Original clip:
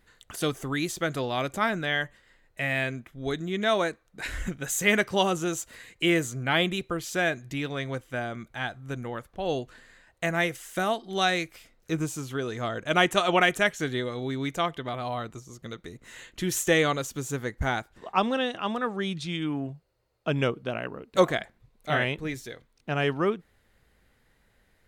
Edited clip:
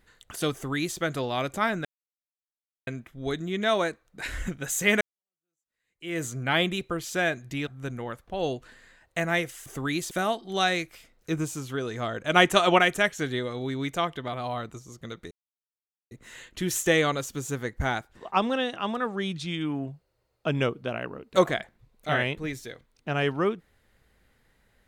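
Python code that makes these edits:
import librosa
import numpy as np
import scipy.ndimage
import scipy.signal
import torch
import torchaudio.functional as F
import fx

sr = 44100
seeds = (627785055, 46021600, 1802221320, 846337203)

y = fx.edit(x, sr, fx.duplicate(start_s=0.53, length_s=0.45, to_s=10.72),
    fx.silence(start_s=1.85, length_s=1.02),
    fx.fade_in_span(start_s=5.01, length_s=1.23, curve='exp'),
    fx.cut(start_s=7.67, length_s=1.06),
    fx.clip_gain(start_s=12.97, length_s=0.42, db=3.0),
    fx.insert_silence(at_s=15.92, length_s=0.8), tone=tone)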